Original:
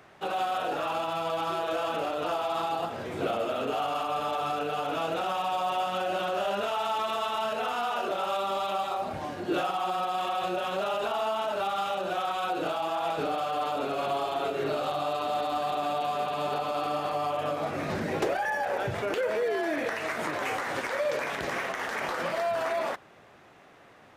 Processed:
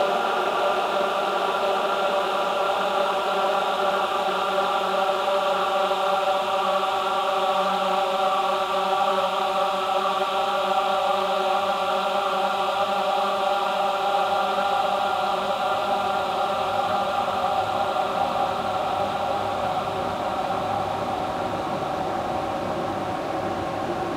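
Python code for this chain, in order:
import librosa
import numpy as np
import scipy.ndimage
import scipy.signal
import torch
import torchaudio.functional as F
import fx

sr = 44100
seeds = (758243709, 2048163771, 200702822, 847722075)

y = fx.wow_flutter(x, sr, seeds[0], rate_hz=2.1, depth_cents=62.0)
y = fx.paulstretch(y, sr, seeds[1], factor=22.0, window_s=1.0, from_s=8.14)
y = fx.doppler_dist(y, sr, depth_ms=0.18)
y = y * librosa.db_to_amplitude(7.0)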